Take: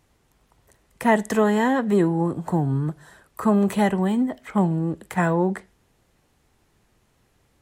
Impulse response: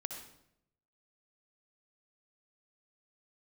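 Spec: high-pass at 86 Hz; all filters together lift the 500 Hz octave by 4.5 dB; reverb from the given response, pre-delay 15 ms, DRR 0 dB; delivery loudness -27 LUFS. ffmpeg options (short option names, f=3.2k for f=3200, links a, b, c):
-filter_complex "[0:a]highpass=86,equalizer=f=500:t=o:g=6,asplit=2[a][b];[1:a]atrim=start_sample=2205,adelay=15[c];[b][c]afir=irnorm=-1:irlink=0,volume=1dB[d];[a][d]amix=inputs=2:normalize=0,volume=-10dB"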